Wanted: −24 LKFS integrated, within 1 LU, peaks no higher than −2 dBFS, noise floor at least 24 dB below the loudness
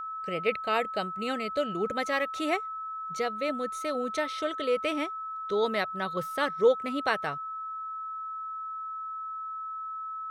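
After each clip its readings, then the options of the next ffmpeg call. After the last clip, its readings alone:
interfering tone 1,300 Hz; level of the tone −34 dBFS; integrated loudness −31.0 LKFS; sample peak −11.5 dBFS; target loudness −24.0 LKFS
→ -af "bandreject=frequency=1300:width=30"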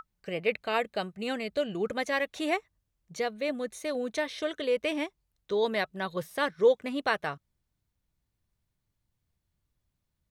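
interfering tone none found; integrated loudness −31.0 LKFS; sample peak −12.0 dBFS; target loudness −24.0 LKFS
→ -af "volume=7dB"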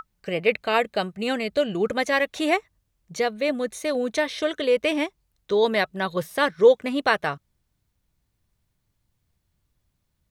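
integrated loudness −24.0 LKFS; sample peak −5.0 dBFS; background noise floor −75 dBFS

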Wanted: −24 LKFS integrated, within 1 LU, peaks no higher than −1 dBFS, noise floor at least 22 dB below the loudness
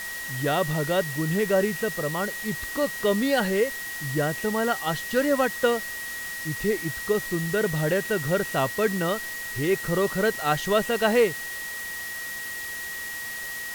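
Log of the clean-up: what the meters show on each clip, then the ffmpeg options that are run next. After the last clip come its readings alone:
interfering tone 1,900 Hz; level of the tone −33 dBFS; background noise floor −34 dBFS; target noise floor −48 dBFS; integrated loudness −26.0 LKFS; sample peak −8.5 dBFS; target loudness −24.0 LKFS
→ -af "bandreject=frequency=1900:width=30"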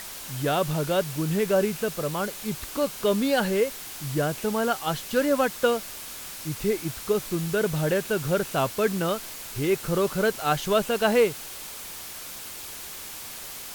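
interfering tone none found; background noise floor −39 dBFS; target noise floor −49 dBFS
→ -af "afftdn=noise_reduction=10:noise_floor=-39"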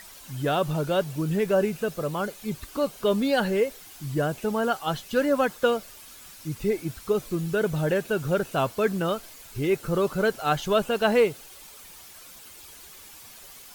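background noise floor −47 dBFS; target noise floor −48 dBFS
→ -af "afftdn=noise_reduction=6:noise_floor=-47"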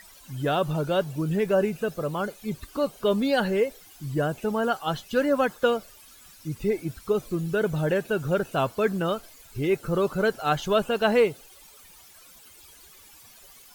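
background noise floor −51 dBFS; integrated loudness −26.0 LKFS; sample peak −9.0 dBFS; target loudness −24.0 LKFS
→ -af "volume=2dB"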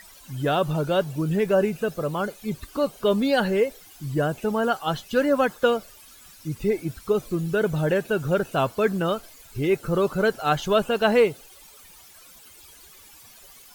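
integrated loudness −24.0 LKFS; sample peak −7.0 dBFS; background noise floor −49 dBFS

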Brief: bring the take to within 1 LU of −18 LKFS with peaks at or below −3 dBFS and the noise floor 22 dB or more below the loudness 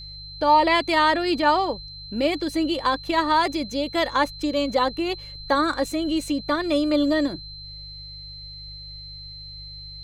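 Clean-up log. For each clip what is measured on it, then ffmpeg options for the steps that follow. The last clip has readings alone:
mains hum 50 Hz; hum harmonics up to 150 Hz; level of the hum −41 dBFS; interfering tone 4,100 Hz; level of the tone −38 dBFS; integrated loudness −22.5 LKFS; sample peak −8.0 dBFS; target loudness −18.0 LKFS
→ -af "bandreject=frequency=50:width_type=h:width=4,bandreject=frequency=100:width_type=h:width=4,bandreject=frequency=150:width_type=h:width=4"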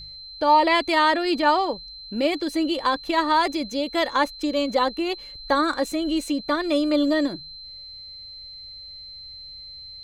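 mains hum none found; interfering tone 4,100 Hz; level of the tone −38 dBFS
→ -af "bandreject=frequency=4100:width=30"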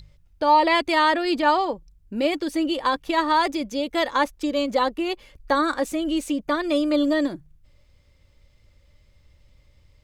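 interfering tone none found; integrated loudness −22.5 LKFS; sample peak −8.5 dBFS; target loudness −18.0 LKFS
→ -af "volume=4.5dB"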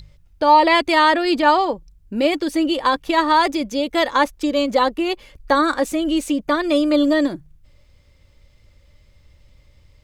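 integrated loudness −18.0 LKFS; sample peak −4.0 dBFS; background noise floor −54 dBFS

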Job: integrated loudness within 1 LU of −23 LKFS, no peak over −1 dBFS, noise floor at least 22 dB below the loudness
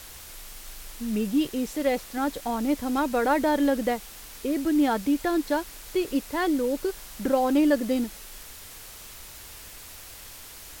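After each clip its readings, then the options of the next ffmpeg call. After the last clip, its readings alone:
background noise floor −44 dBFS; target noise floor −48 dBFS; integrated loudness −26.0 LKFS; sample peak −9.5 dBFS; target loudness −23.0 LKFS
→ -af "afftdn=noise_reduction=6:noise_floor=-44"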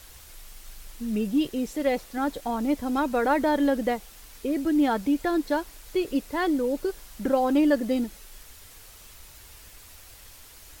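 background noise floor −49 dBFS; integrated loudness −26.0 LKFS; sample peak −9.5 dBFS; target loudness −23.0 LKFS
→ -af "volume=3dB"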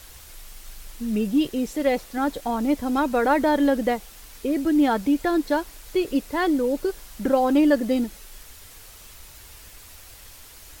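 integrated loudness −23.0 LKFS; sample peak −6.5 dBFS; background noise floor −46 dBFS

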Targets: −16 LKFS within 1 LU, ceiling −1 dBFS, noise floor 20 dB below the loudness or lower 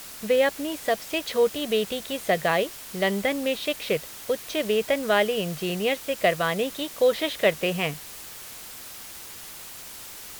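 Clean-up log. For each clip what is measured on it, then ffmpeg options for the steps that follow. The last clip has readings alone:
background noise floor −41 dBFS; target noise floor −46 dBFS; integrated loudness −25.5 LKFS; sample peak −7.5 dBFS; target loudness −16.0 LKFS
→ -af "afftdn=noise_reduction=6:noise_floor=-41"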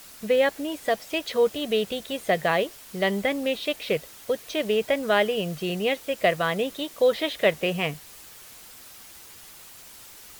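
background noise floor −47 dBFS; integrated loudness −25.5 LKFS; sample peak −8.0 dBFS; target loudness −16.0 LKFS
→ -af "volume=9.5dB,alimiter=limit=-1dB:level=0:latency=1"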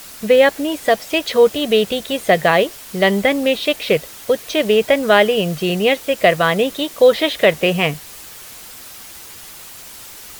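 integrated loudness −16.0 LKFS; sample peak −1.0 dBFS; background noise floor −37 dBFS

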